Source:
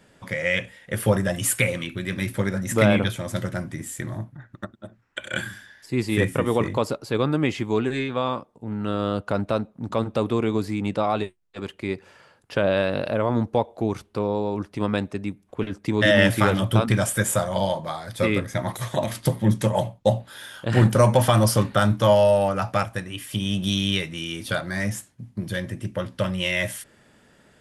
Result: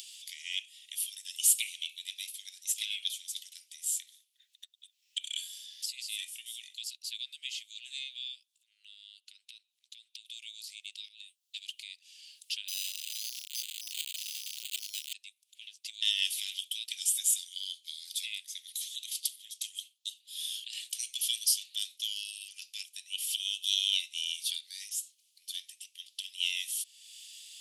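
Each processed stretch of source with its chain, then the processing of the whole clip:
8.5–10.25 bell 440 Hz +14 dB 2.9 oct + compressor 2:1, threshold -28 dBFS
11.08–11.74 low shelf 440 Hz -8.5 dB + compressor 10:1, threshold -34 dBFS
12.68–15.13 switching spikes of -17 dBFS + careless resampling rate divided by 8×, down none, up hold + tilt shelf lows +4 dB, about 1200 Hz
whole clip: upward compressor, threshold -23 dBFS; steep high-pass 2900 Hz 48 dB/oct

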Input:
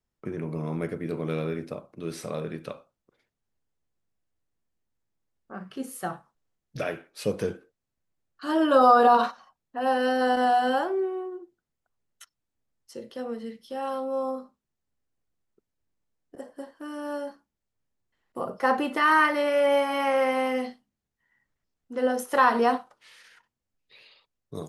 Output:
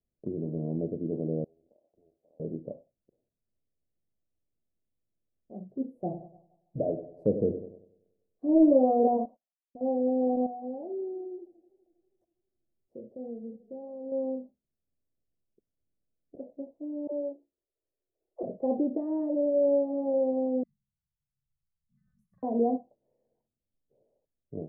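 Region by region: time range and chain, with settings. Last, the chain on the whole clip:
1.44–2.4 HPF 800 Hz + compressor 8:1, threshold -54 dBFS + AM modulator 260 Hz, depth 55%
5.97–8.73 split-band echo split 890 Hz, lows 96 ms, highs 0.155 s, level -12 dB + sample leveller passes 1
9.25–9.81 gate -48 dBFS, range -31 dB + compressor 10:1, threshold -37 dBFS
10.46–14.12 compressor 2:1, threshold -37 dBFS + warbling echo 81 ms, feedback 76%, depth 130 cents, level -21.5 dB
17.07–18.43 resonant low shelf 280 Hz -10 dB, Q 3 + dispersion lows, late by 81 ms, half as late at 330 Hz
20.63–22.43 brick-wall FIR band-stop 190–1100 Hz + compressor 2:1, threshold -33 dBFS
whole clip: elliptic low-pass 660 Hz, stop band 50 dB; dynamic EQ 280 Hz, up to +4 dB, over -43 dBFS, Q 1.8; gain -2 dB

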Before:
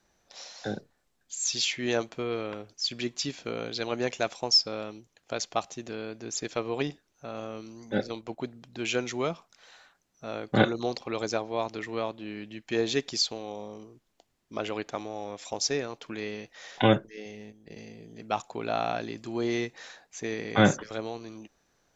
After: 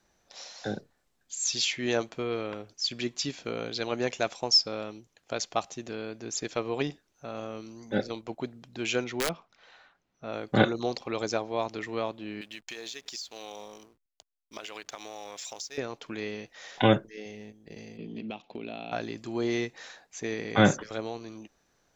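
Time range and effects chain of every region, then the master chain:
9.04–10.33 LPF 3500 Hz + notch 1700 Hz, Q 29 + wrapped overs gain 20 dB
12.41–15.78 tilt +4.5 dB/oct + compressor 16:1, threshold -35 dBFS + backlash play -50.5 dBFS
17.97–18.92 EQ curve 120 Hz 0 dB, 220 Hz +12 dB, 700 Hz +2 dB, 1200 Hz -5 dB, 1800 Hz -1 dB, 2700 Hz +12 dB, 4400 Hz +3 dB, 9500 Hz -30 dB + compressor 12:1, threshold -33 dBFS + gate -42 dBFS, range -7 dB
whole clip: dry

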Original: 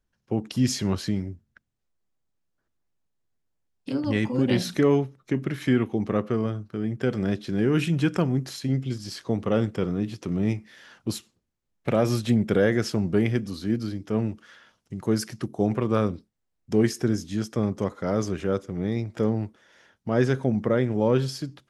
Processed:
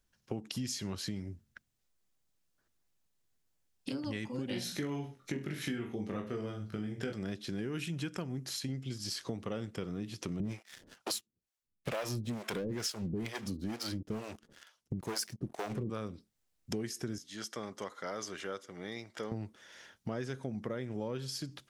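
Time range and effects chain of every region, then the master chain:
4.48–7.13 notch 1100 Hz, Q 14 + reverse bouncing-ball echo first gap 20 ms, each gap 1.1×, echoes 5
10.4–15.9 sample leveller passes 3 + harmonic tremolo 2.2 Hz, depth 100%, crossover 460 Hz
17.18–19.32 HPF 1400 Hz 6 dB/oct + high shelf 4500 Hz -9 dB + notch 2500 Hz, Q 10
whole clip: high shelf 2300 Hz +9 dB; compressor 6:1, threshold -34 dBFS; gain -1.5 dB

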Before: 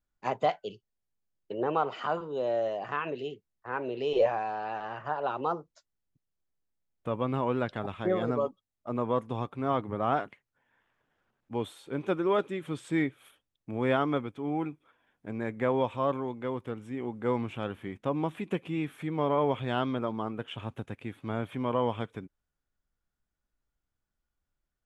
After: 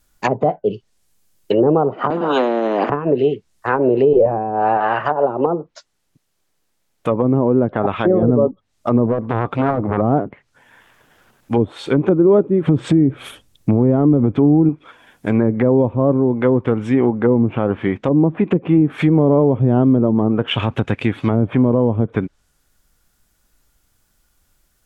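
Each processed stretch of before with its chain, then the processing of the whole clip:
2.1–2.9 elliptic high-pass 260 Hz, stop band 60 dB + spectral compressor 4:1
4.77–8.23 LPF 3600 Hz 6 dB/oct + low shelf 170 Hz -9.5 dB
9.06–9.98 hard clip -18.5 dBFS + core saturation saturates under 1100 Hz
12.67–14.69 low shelf 450 Hz +9.5 dB + compressor 10:1, threshold -28 dBFS
17.1–18.9 LPF 1800 Hz 6 dB/oct + low shelf 150 Hz -4.5 dB
whole clip: treble ducked by the level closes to 390 Hz, closed at -28 dBFS; high shelf 4600 Hz +11 dB; maximiser +25 dB; gain -4 dB

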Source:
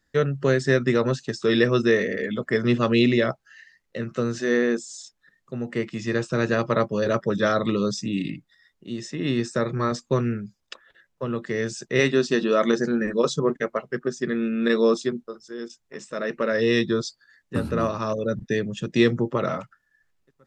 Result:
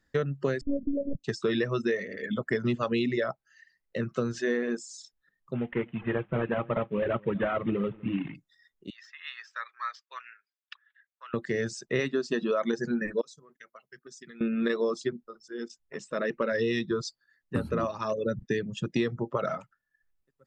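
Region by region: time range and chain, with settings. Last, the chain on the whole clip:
0.61–1.24 steep low-pass 670 Hz 72 dB/oct + notch comb 440 Hz + monotone LPC vocoder at 8 kHz 280 Hz
5.55–8.35 CVSD 16 kbps + echo 0.251 s -16 dB
8.9–11.34 median filter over 5 samples + HPF 1300 Hz 24 dB/oct + air absorption 180 m
13.21–14.41 pre-emphasis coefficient 0.9 + compressor 10:1, threshold -40 dBFS
whole clip: reverb removal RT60 1.7 s; high shelf 4700 Hz -6 dB; compressor, threshold -24 dBFS

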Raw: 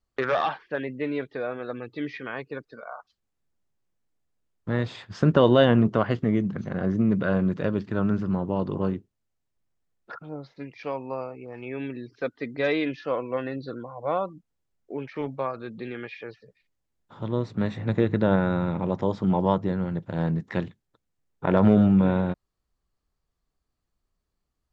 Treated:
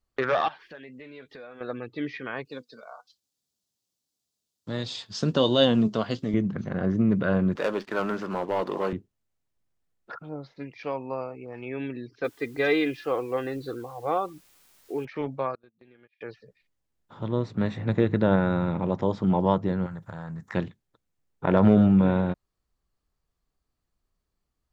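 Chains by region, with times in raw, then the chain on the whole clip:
0.48–1.61 high shelf 2200 Hz +11 dB + compressor 3:1, threshold -46 dBFS + doubler 12 ms -11 dB
2.45–6.34 HPF 94 Hz + resonant high shelf 2900 Hz +13 dB, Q 1.5 + flange 1.3 Hz, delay 3.3 ms, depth 1.5 ms, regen +75%
7.55–8.93 HPF 490 Hz + sample leveller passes 2
12.24–15.05 comb 2.5 ms, depth 57% + requantised 10-bit, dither triangular
15.55–16.21 gate -35 dBFS, range -33 dB + compressor 8:1, threshold -52 dBFS
19.86–20.55 EQ curve 130 Hz 0 dB, 210 Hz -5 dB, 340 Hz -10 dB, 840 Hz +2 dB, 1300 Hz +7 dB, 1800 Hz +3 dB, 2800 Hz -5 dB, 4800 Hz +1 dB, 7200 Hz +9 dB + compressor 4:1, threshold -34 dBFS
whole clip: dry

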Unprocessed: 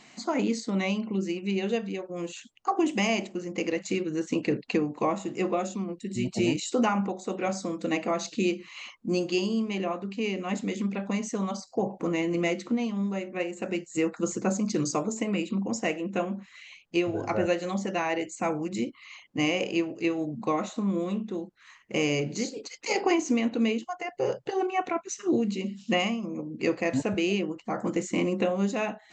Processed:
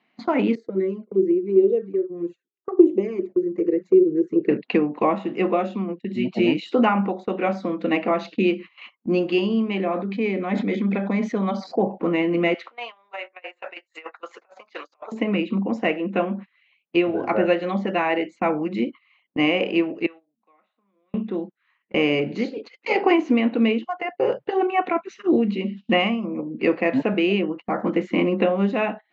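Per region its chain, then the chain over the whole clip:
0.55–4.49 EQ curve 140 Hz 0 dB, 260 Hz -13 dB, 370 Hz +12 dB, 790 Hz -19 dB, 1200 Hz -12 dB, 1800 Hz -13 dB, 2900 Hz -27 dB, 10000 Hz +2 dB + envelope flanger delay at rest 3.6 ms, full sweep at -20 dBFS
9.8–11.85 Butterworth band-stop 2800 Hz, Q 7.2 + bell 1100 Hz -3.5 dB 0.71 oct + sustainer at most 39 dB/s
12.54–15.12 HPF 680 Hz 24 dB/oct + negative-ratio compressor -39 dBFS, ratio -0.5
20.06–21.14 LPF 2000 Hz + differentiator
whole clip: HPF 170 Hz 24 dB/oct; gate -40 dBFS, range -20 dB; LPF 3200 Hz 24 dB/oct; gain +6.5 dB

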